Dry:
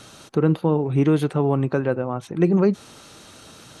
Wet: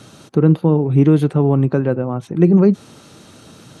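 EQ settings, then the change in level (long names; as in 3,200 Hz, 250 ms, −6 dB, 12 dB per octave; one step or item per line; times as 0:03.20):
high-pass filter 110 Hz
low-shelf EQ 360 Hz +11.5 dB
−1.0 dB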